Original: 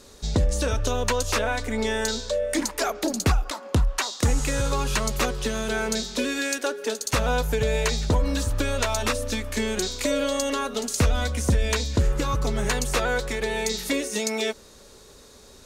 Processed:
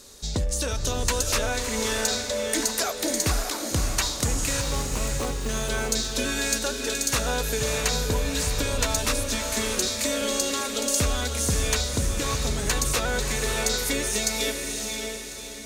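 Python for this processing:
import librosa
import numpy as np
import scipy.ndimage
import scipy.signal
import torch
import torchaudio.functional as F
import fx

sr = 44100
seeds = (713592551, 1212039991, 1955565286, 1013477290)

p1 = fx.median_filter(x, sr, points=25, at=(4.61, 5.49))
p2 = 10.0 ** (-22.0 / 20.0) * np.tanh(p1 / 10.0 ** (-22.0 / 20.0))
p3 = p1 + (p2 * librosa.db_to_amplitude(-6.0))
p4 = fx.high_shelf(p3, sr, hz=3600.0, db=10.5)
p5 = fx.echo_diffused(p4, sr, ms=602, feedback_pct=43, wet_db=-4.0)
y = p5 * librosa.db_to_amplitude(-7.0)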